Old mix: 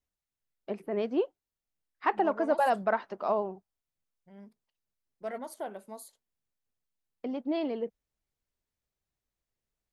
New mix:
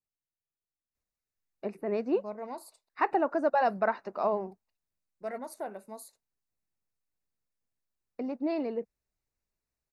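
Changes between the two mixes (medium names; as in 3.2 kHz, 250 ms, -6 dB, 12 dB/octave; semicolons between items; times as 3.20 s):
first voice: entry +0.95 s; master: add Butterworth band-stop 3.2 kHz, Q 4.1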